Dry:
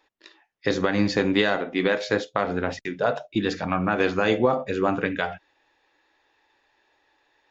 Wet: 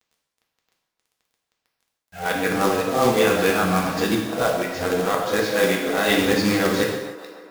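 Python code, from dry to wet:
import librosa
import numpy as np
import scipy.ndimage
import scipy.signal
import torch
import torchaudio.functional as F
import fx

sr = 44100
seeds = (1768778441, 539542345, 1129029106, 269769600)

y = x[::-1].copy()
y = fx.quant_companded(y, sr, bits=4)
y = fx.echo_wet_bandpass(y, sr, ms=143, feedback_pct=74, hz=710.0, wet_db=-13.5)
y = fx.rev_gated(y, sr, seeds[0], gate_ms=330, shape='falling', drr_db=-1.0)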